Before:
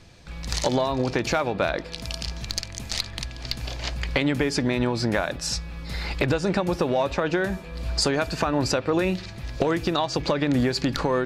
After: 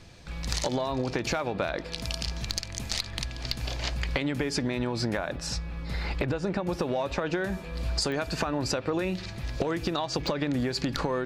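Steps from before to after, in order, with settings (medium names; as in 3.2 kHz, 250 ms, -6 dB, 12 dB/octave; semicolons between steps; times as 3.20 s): 5.17–6.69 s: treble shelf 3.2 kHz -8.5 dB; compression, threshold -25 dBFS, peak gain reduction 7.5 dB; clicks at 8.12/10.27 s, -24 dBFS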